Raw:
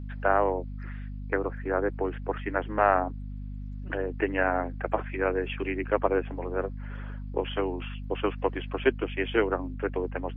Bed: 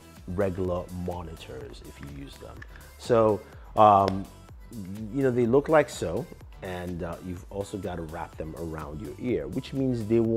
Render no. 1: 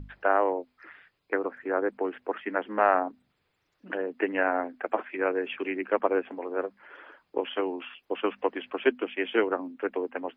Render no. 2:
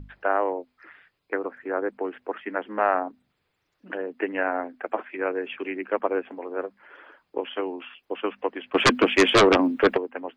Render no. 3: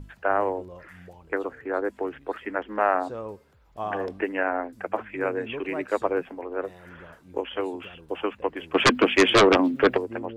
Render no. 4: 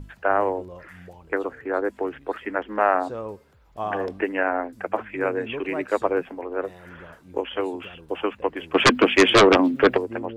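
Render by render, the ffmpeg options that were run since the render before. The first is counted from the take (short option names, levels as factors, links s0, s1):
-af "bandreject=f=50:t=h:w=6,bandreject=f=100:t=h:w=6,bandreject=f=150:t=h:w=6,bandreject=f=200:t=h:w=6,bandreject=f=250:t=h:w=6"
-filter_complex "[0:a]asplit=3[s0][s1][s2];[s0]afade=t=out:st=8.74:d=0.02[s3];[s1]aeval=exprs='0.282*sin(PI/2*3.98*val(0)/0.282)':c=same,afade=t=in:st=8.74:d=0.02,afade=t=out:st=9.96:d=0.02[s4];[s2]afade=t=in:st=9.96:d=0.02[s5];[s3][s4][s5]amix=inputs=3:normalize=0"
-filter_complex "[1:a]volume=0.188[s0];[0:a][s0]amix=inputs=2:normalize=0"
-af "volume=1.33"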